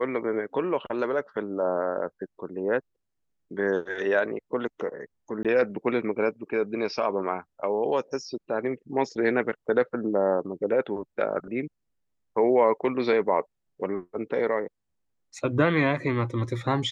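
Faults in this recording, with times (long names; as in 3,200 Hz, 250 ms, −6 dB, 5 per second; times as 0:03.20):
0:05.43–0:05.45: drop-out 17 ms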